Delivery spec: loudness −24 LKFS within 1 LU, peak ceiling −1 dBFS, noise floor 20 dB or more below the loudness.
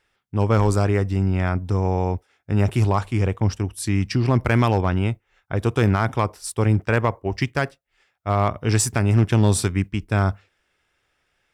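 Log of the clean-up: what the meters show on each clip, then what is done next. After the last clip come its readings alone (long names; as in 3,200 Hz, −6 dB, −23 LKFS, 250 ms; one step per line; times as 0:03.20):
share of clipped samples 0.5%; peaks flattened at −10.0 dBFS; integrated loudness −21.5 LKFS; sample peak −10.0 dBFS; target loudness −24.0 LKFS
→ clipped peaks rebuilt −10 dBFS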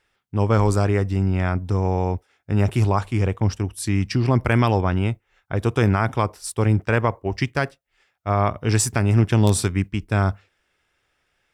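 share of clipped samples 0.0%; integrated loudness −21.5 LKFS; sample peak −2.5 dBFS; target loudness −24.0 LKFS
→ level −2.5 dB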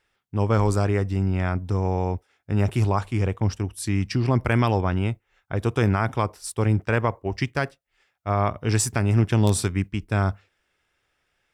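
integrated loudness −24.0 LKFS; sample peak −5.0 dBFS; background noise floor −74 dBFS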